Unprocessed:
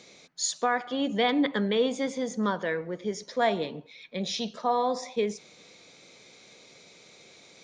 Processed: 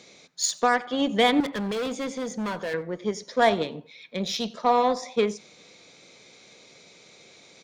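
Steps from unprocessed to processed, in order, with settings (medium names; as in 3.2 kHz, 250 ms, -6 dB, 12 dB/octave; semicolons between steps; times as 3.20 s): 1.40–2.74 s: hard clipper -28.5 dBFS, distortion -10 dB; Chebyshev shaper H 7 -26 dB, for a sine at -13 dBFS; delay 91 ms -24 dB; trim +5 dB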